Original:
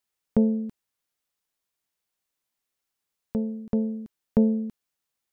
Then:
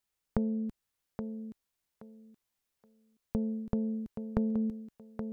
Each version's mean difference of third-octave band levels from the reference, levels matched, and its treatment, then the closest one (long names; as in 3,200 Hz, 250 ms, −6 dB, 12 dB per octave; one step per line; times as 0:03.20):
2.5 dB: low-shelf EQ 93 Hz +10.5 dB
downward compressor 6 to 1, threshold −26 dBFS, peak gain reduction 11.5 dB
feedback echo with a high-pass in the loop 824 ms, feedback 25%, high-pass 170 Hz, level −6 dB
level −2 dB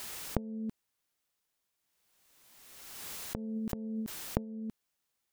6.0 dB: dynamic equaliser 150 Hz, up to +4 dB, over −41 dBFS, Q 5.5
gate with flip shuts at −22 dBFS, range −25 dB
background raised ahead of every attack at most 31 dB per second
level +1 dB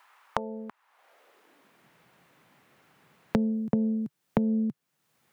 3.5 dB: downward compressor, threshold −22 dBFS, peak gain reduction 7 dB
high-pass filter sweep 1,000 Hz → 140 Hz, 0:00.83–0:01.92
multiband upward and downward compressor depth 100%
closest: first